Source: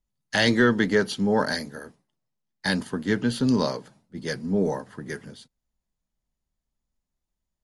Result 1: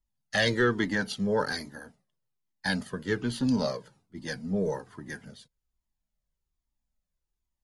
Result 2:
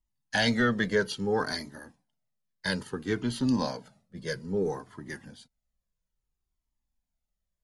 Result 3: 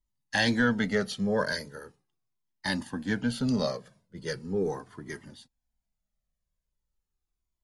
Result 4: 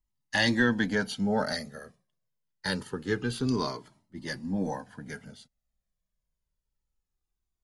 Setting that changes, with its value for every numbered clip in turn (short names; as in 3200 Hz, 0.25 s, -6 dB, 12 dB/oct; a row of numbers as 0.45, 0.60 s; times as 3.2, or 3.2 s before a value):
cascading flanger, rate: 1.2, 0.6, 0.39, 0.25 Hz